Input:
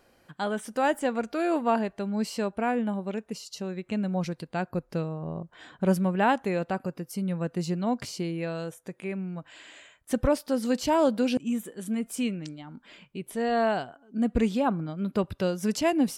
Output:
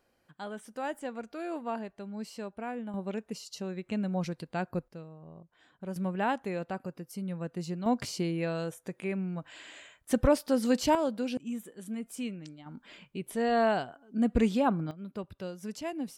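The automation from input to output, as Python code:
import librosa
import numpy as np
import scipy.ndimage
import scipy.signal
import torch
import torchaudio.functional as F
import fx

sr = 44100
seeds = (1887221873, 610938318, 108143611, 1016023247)

y = fx.gain(x, sr, db=fx.steps((0.0, -10.5), (2.94, -3.0), (4.88, -15.0), (5.96, -6.5), (7.86, 0.0), (10.95, -7.5), (12.66, -1.0), (14.91, -12.0)))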